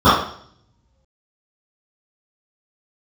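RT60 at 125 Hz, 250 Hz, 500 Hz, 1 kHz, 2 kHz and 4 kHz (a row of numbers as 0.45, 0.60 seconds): 1.3, 0.65, 0.60, 0.55, 0.55, 0.65 seconds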